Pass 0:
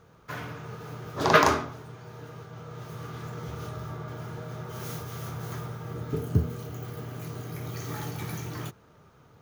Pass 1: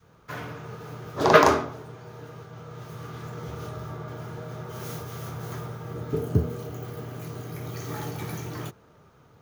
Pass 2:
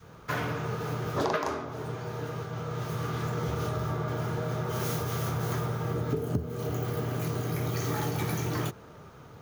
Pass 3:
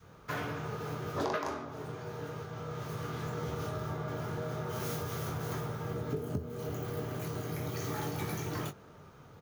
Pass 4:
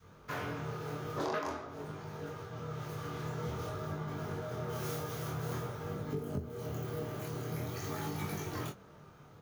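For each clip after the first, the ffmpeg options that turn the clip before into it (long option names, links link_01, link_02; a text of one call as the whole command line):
ffmpeg -i in.wav -af "adynamicequalizer=threshold=0.00891:dfrequency=490:dqfactor=0.73:tfrequency=490:tqfactor=0.73:attack=5:release=100:ratio=0.375:range=3:mode=boostabove:tftype=bell" out.wav
ffmpeg -i in.wav -af "acompressor=threshold=-33dB:ratio=12,volume=7dB" out.wav
ffmpeg -i in.wav -filter_complex "[0:a]asplit=2[link_01][link_02];[link_02]adelay=21,volume=-9.5dB[link_03];[link_01][link_03]amix=inputs=2:normalize=0,volume=-5.5dB" out.wav
ffmpeg -i in.wav -af "flanger=delay=20:depth=7.7:speed=0.49,volume=1dB" out.wav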